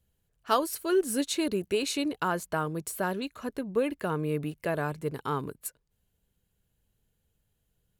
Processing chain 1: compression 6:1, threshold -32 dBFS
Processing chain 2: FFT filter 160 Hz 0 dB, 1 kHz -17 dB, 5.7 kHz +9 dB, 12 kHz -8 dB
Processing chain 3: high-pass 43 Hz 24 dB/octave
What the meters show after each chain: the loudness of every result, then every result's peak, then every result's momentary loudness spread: -37.0 LUFS, -34.5 LUFS, -30.5 LUFS; -21.0 dBFS, -14.5 dBFS, -9.5 dBFS; 4 LU, 10 LU, 8 LU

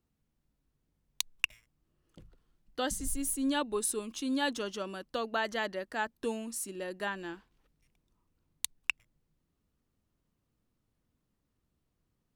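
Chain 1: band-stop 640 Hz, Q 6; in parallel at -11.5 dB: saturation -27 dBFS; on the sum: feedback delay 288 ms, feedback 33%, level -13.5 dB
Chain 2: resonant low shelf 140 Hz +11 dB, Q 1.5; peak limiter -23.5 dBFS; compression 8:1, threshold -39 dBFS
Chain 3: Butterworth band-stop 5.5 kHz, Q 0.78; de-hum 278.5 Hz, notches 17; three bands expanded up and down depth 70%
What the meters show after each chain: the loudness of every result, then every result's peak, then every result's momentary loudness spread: -33.0 LUFS, -44.5 LUFS, -34.5 LUFS; -11.5 dBFS, -23.5 dBFS, -9.5 dBFS; 15 LU, 11 LU, 13 LU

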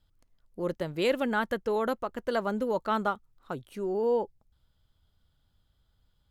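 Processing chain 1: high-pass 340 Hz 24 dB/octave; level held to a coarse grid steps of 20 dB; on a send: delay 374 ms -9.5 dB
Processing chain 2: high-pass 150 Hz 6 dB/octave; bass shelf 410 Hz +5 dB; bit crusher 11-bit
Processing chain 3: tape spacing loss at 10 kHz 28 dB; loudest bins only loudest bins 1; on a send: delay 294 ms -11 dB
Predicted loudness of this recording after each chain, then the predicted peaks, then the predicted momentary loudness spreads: -43.0 LUFS, -28.5 LUFS, -39.0 LUFS; -27.5 dBFS, -13.0 dBFS, -26.0 dBFS; 7 LU, 13 LU, 14 LU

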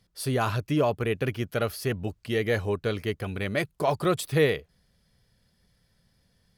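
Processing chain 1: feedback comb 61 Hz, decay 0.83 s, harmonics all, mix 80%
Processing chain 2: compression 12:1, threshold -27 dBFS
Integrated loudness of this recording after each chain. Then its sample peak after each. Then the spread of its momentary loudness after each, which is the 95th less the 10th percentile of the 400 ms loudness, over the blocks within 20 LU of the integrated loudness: -36.5 LUFS, -33.0 LUFS; -20.5 dBFS, -18.5 dBFS; 7 LU, 3 LU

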